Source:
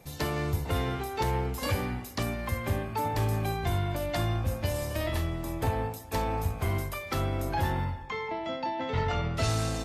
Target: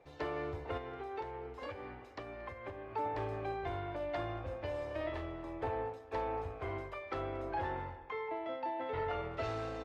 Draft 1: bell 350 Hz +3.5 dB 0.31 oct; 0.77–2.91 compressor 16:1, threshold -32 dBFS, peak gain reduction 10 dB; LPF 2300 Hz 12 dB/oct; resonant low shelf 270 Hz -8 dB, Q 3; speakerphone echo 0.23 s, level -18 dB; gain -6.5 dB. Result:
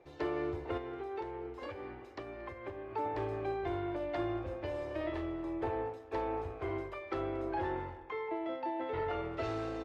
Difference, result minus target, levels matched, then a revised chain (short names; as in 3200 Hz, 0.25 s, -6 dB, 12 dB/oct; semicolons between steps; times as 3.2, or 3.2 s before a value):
250 Hz band +5.0 dB
bell 350 Hz -6.5 dB 0.31 oct; 0.77–2.91 compressor 16:1, threshold -32 dBFS, peak gain reduction 9.5 dB; LPF 2300 Hz 12 dB/oct; resonant low shelf 270 Hz -8 dB, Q 3; speakerphone echo 0.23 s, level -18 dB; gain -6.5 dB